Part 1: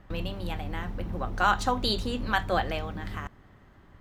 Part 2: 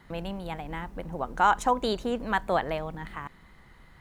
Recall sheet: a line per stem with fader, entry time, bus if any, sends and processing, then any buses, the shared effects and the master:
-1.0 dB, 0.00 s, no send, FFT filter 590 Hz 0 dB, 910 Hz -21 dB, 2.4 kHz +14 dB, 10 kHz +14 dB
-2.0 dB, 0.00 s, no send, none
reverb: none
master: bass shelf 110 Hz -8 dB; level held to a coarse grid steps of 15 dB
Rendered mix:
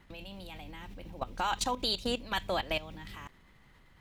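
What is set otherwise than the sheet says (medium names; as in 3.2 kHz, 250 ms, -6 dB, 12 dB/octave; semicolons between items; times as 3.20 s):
stem 1 -1.0 dB -> -8.5 dB; master: missing bass shelf 110 Hz -8 dB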